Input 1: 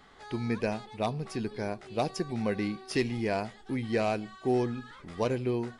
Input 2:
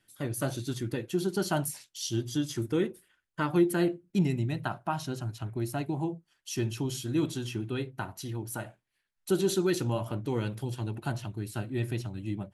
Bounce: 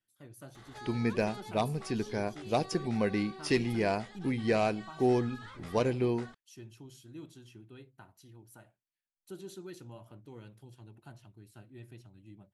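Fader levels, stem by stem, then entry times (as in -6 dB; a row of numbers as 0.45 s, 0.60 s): +0.5 dB, -18.5 dB; 0.55 s, 0.00 s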